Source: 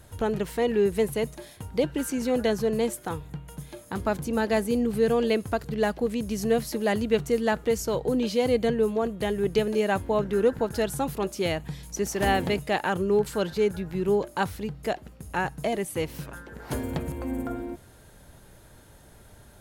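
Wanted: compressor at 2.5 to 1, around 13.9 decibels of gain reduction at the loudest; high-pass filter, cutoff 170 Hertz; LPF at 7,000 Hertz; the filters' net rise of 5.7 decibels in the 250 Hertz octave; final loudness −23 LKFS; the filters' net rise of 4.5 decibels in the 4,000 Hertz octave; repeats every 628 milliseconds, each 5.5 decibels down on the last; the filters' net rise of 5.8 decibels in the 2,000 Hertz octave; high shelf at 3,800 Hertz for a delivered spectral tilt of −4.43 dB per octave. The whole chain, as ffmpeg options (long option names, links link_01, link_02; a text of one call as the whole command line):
ffmpeg -i in.wav -af "highpass=170,lowpass=7000,equalizer=frequency=250:width_type=o:gain=8,equalizer=frequency=2000:width_type=o:gain=7,highshelf=frequency=3800:gain=-6,equalizer=frequency=4000:width_type=o:gain=7,acompressor=threshold=-37dB:ratio=2.5,aecho=1:1:628|1256|1884|2512|3140|3768|4396:0.531|0.281|0.149|0.079|0.0419|0.0222|0.0118,volume=11.5dB" out.wav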